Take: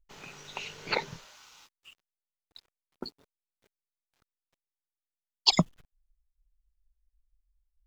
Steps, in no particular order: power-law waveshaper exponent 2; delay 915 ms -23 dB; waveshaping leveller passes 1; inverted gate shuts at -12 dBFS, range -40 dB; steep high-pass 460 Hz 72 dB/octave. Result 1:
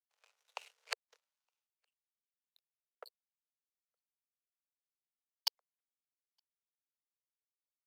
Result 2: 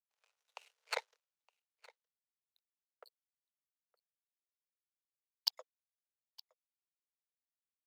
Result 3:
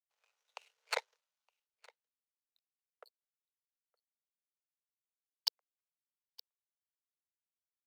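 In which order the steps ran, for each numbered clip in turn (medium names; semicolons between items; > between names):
waveshaping leveller > inverted gate > delay > power-law waveshaper > steep high-pass; waveshaping leveller > power-law waveshaper > steep high-pass > inverted gate > delay; inverted gate > power-law waveshaper > delay > waveshaping leveller > steep high-pass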